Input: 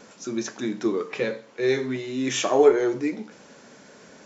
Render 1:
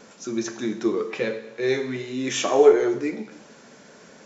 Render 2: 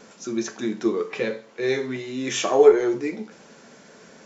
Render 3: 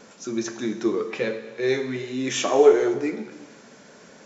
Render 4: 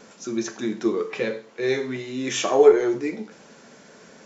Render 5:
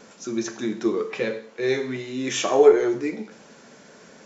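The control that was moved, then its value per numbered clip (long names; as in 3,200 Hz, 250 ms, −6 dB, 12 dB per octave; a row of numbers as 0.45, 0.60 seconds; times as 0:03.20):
reverb whose tail is shaped and stops, gate: 340, 90, 530, 140, 220 milliseconds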